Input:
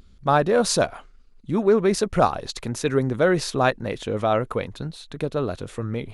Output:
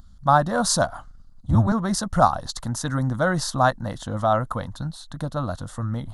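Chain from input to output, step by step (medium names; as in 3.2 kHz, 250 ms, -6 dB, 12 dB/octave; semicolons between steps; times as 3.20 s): 0.93–1.72 s: octave divider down 1 oct, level +3 dB; static phaser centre 1 kHz, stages 4; trim +4 dB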